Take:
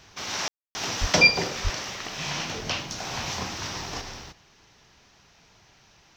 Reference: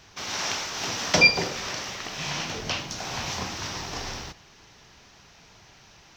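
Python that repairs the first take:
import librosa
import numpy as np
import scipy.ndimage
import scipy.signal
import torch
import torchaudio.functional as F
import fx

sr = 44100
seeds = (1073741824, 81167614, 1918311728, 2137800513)

y = fx.fix_deplosive(x, sr, at_s=(1.0, 1.63))
y = fx.fix_ambience(y, sr, seeds[0], print_start_s=5.0, print_end_s=5.5, start_s=0.48, end_s=0.75)
y = fx.gain(y, sr, db=fx.steps((0.0, 0.0), (4.01, 4.5)))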